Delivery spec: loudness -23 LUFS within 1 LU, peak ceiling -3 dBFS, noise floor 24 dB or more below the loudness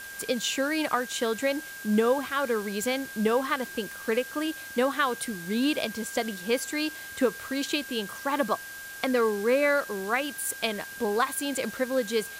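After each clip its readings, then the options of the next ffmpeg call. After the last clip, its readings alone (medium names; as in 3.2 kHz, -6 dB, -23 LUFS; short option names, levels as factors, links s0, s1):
steady tone 1.6 kHz; tone level -40 dBFS; noise floor -41 dBFS; noise floor target -52 dBFS; loudness -28.0 LUFS; peak level -11.0 dBFS; loudness target -23.0 LUFS
-> -af "bandreject=f=1600:w=30"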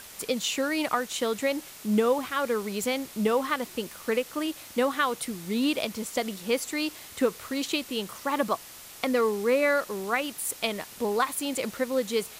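steady tone not found; noise floor -46 dBFS; noise floor target -53 dBFS
-> -af "afftdn=nr=7:nf=-46"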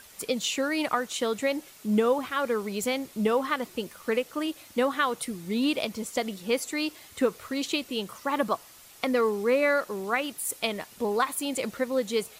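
noise floor -51 dBFS; noise floor target -53 dBFS
-> -af "afftdn=nr=6:nf=-51"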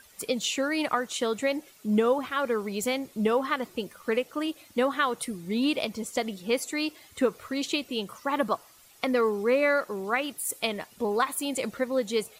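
noise floor -56 dBFS; loudness -28.5 LUFS; peak level -11.5 dBFS; loudness target -23.0 LUFS
-> -af "volume=1.88"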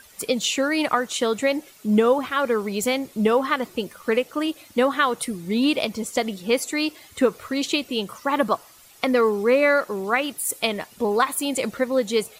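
loudness -23.0 LUFS; peak level -6.5 dBFS; noise floor -50 dBFS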